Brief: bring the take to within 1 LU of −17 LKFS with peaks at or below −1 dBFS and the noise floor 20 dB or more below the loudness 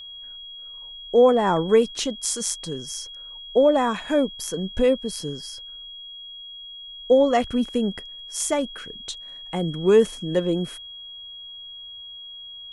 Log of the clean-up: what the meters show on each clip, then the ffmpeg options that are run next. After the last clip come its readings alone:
interfering tone 3,300 Hz; level of the tone −37 dBFS; integrated loudness −22.5 LKFS; sample peak −6.5 dBFS; target loudness −17.0 LKFS
→ -af "bandreject=frequency=3300:width=30"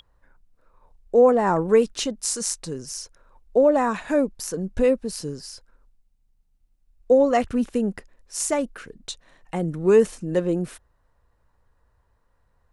interfering tone none found; integrated loudness −22.5 LKFS; sample peak −7.0 dBFS; target loudness −17.0 LKFS
→ -af "volume=5.5dB"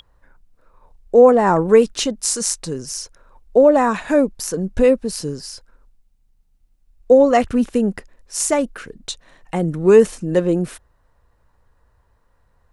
integrated loudness −17.0 LKFS; sample peak −1.5 dBFS; background noise floor −61 dBFS

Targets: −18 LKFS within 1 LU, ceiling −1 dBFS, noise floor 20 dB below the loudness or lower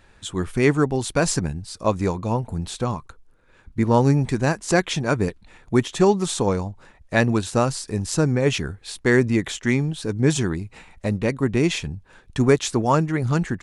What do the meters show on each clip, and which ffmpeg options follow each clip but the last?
integrated loudness −22.0 LKFS; sample peak −3.0 dBFS; target loudness −18.0 LKFS
→ -af "volume=4dB,alimiter=limit=-1dB:level=0:latency=1"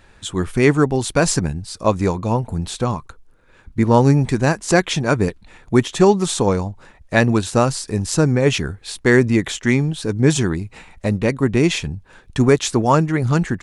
integrated loudness −18.0 LKFS; sample peak −1.0 dBFS; background noise floor −51 dBFS

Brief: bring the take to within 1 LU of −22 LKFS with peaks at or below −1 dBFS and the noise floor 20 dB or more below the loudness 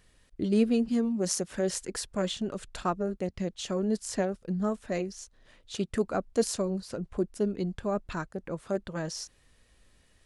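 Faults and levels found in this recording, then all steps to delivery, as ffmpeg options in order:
integrated loudness −31.5 LKFS; sample peak −12.5 dBFS; target loudness −22.0 LKFS
→ -af "volume=9.5dB"

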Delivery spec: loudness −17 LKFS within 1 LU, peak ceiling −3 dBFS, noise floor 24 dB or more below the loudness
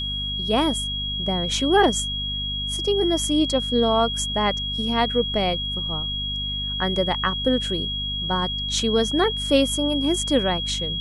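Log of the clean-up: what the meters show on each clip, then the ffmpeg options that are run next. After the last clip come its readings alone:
mains hum 50 Hz; hum harmonics up to 250 Hz; level of the hum −30 dBFS; interfering tone 3,300 Hz; level of the tone −26 dBFS; integrated loudness −22.0 LKFS; sample peak −6.0 dBFS; target loudness −17.0 LKFS
→ -af "bandreject=frequency=50:width_type=h:width=6,bandreject=frequency=100:width_type=h:width=6,bandreject=frequency=150:width_type=h:width=6,bandreject=frequency=200:width_type=h:width=6,bandreject=frequency=250:width_type=h:width=6"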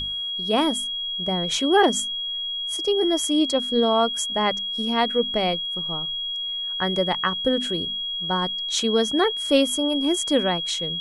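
mains hum none found; interfering tone 3,300 Hz; level of the tone −26 dBFS
→ -af "bandreject=frequency=3300:width=30"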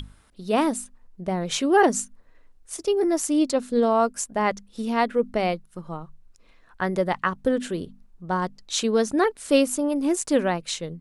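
interfering tone none found; integrated loudness −24.0 LKFS; sample peak −7.0 dBFS; target loudness −17.0 LKFS
→ -af "volume=7dB,alimiter=limit=-3dB:level=0:latency=1"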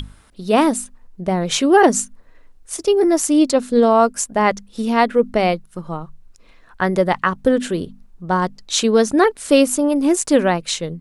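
integrated loudness −17.0 LKFS; sample peak −3.0 dBFS; background noise floor −49 dBFS

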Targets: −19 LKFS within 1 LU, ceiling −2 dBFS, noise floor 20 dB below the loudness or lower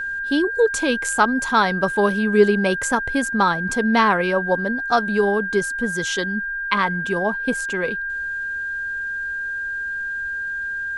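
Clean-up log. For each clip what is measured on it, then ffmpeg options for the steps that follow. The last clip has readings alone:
interfering tone 1,600 Hz; level of the tone −24 dBFS; integrated loudness −21.0 LKFS; sample peak −2.5 dBFS; target loudness −19.0 LKFS
→ -af "bandreject=frequency=1600:width=30"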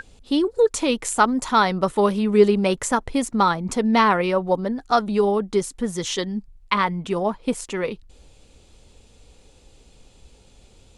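interfering tone none found; integrated loudness −21.5 LKFS; sample peak −3.5 dBFS; target loudness −19.0 LKFS
→ -af "volume=2.5dB,alimiter=limit=-2dB:level=0:latency=1"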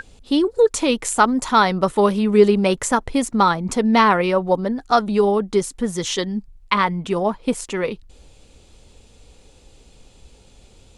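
integrated loudness −19.0 LKFS; sample peak −2.0 dBFS; background noise floor −51 dBFS

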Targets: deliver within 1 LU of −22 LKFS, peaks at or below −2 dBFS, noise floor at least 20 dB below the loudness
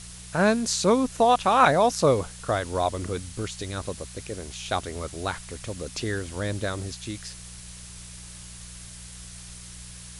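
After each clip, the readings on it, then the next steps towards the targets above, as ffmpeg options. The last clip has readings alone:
mains hum 60 Hz; hum harmonics up to 180 Hz; level of the hum −43 dBFS; background noise floor −43 dBFS; target noise floor −46 dBFS; integrated loudness −25.5 LKFS; sample peak −4.0 dBFS; target loudness −22.0 LKFS
→ -af "bandreject=frequency=60:width_type=h:width=4,bandreject=frequency=120:width_type=h:width=4,bandreject=frequency=180:width_type=h:width=4"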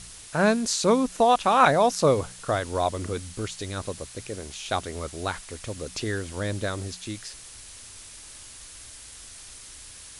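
mains hum none found; background noise floor −45 dBFS; target noise floor −46 dBFS
→ -af "afftdn=noise_reduction=6:noise_floor=-45"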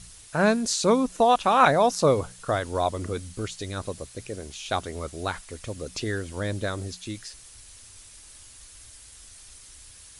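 background noise floor −49 dBFS; integrated loudness −25.5 LKFS; sample peak −4.0 dBFS; target loudness −22.0 LKFS
→ -af "volume=3.5dB,alimiter=limit=-2dB:level=0:latency=1"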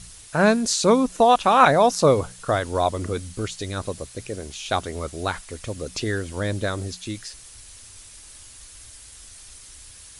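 integrated loudness −22.0 LKFS; sample peak −2.0 dBFS; background noise floor −45 dBFS

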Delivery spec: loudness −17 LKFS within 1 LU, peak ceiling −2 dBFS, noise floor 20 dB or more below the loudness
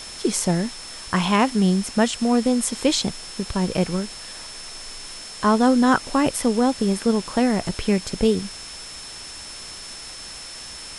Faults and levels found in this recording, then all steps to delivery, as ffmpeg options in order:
interfering tone 5,300 Hz; level of the tone −38 dBFS; background noise floor −37 dBFS; target noise floor −42 dBFS; integrated loudness −21.5 LKFS; sample peak −4.5 dBFS; target loudness −17.0 LKFS
→ -af "bandreject=frequency=5300:width=30"
-af "afftdn=noise_reduction=6:noise_floor=-37"
-af "volume=4.5dB,alimiter=limit=-2dB:level=0:latency=1"

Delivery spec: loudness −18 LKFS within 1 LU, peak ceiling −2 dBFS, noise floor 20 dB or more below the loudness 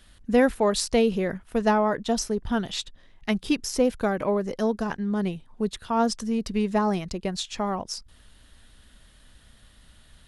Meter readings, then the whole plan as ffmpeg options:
integrated loudness −26.0 LKFS; sample peak −8.0 dBFS; target loudness −18.0 LKFS
→ -af "volume=8dB,alimiter=limit=-2dB:level=0:latency=1"

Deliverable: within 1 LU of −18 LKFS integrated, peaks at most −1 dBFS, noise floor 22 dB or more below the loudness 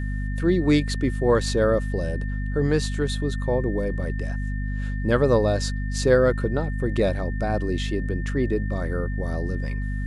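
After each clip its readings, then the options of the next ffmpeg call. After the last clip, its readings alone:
mains hum 50 Hz; hum harmonics up to 250 Hz; level of the hum −25 dBFS; interfering tone 1,800 Hz; level of the tone −39 dBFS; integrated loudness −24.5 LKFS; sample peak −5.0 dBFS; target loudness −18.0 LKFS
→ -af "bandreject=frequency=50:width_type=h:width=6,bandreject=frequency=100:width_type=h:width=6,bandreject=frequency=150:width_type=h:width=6,bandreject=frequency=200:width_type=h:width=6,bandreject=frequency=250:width_type=h:width=6"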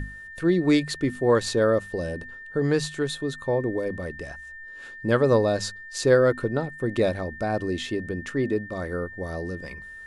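mains hum none found; interfering tone 1,800 Hz; level of the tone −39 dBFS
→ -af "bandreject=frequency=1800:width=30"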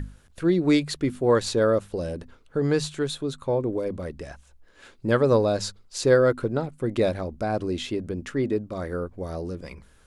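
interfering tone none found; integrated loudness −25.5 LKFS; sample peak −7.0 dBFS; target loudness −18.0 LKFS
→ -af "volume=7.5dB,alimiter=limit=-1dB:level=0:latency=1"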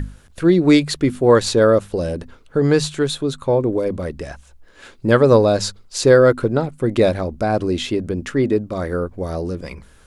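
integrated loudness −18.0 LKFS; sample peak −1.0 dBFS; background noise floor −48 dBFS

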